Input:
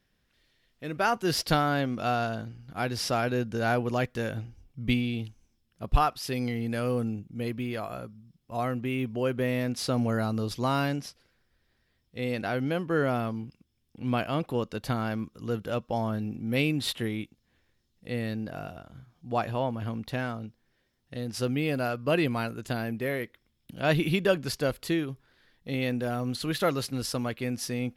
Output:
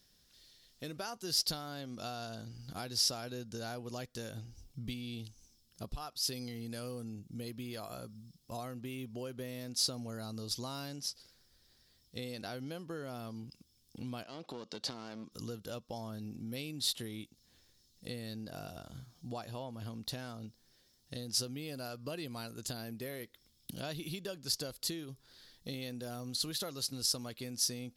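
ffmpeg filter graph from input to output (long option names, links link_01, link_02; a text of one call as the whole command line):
ffmpeg -i in.wav -filter_complex "[0:a]asettb=1/sr,asplit=3[link_01][link_02][link_03];[link_01]atrim=end=14.234[link_04];[link_02]atrim=start=14.23:end=15.32,asetpts=PTS-STARTPTS,afade=type=in:duration=0.004:curve=qsin,afade=type=out:start_time=1.086:duration=0.004:curve=qsin,aeval=exprs='clip(val(0),-1,0.0224)':channel_layout=same,highpass=210,lowpass=4900,acompressor=threshold=-36dB:ratio=2:attack=3.2:release=140:knee=1:detection=peak[link_05];[link_03]atrim=start=15.316[link_06];[link_04][link_05]acrossfade=duration=0.004:curve1=hsin:curve2=qsin[link_07];[link_07][link_06]acrossfade=duration=0.004:curve1=qsin:curve2=hsin,acompressor=threshold=-41dB:ratio=5,highshelf=frequency=3300:width_type=q:width=1.5:gain=11.5" out.wav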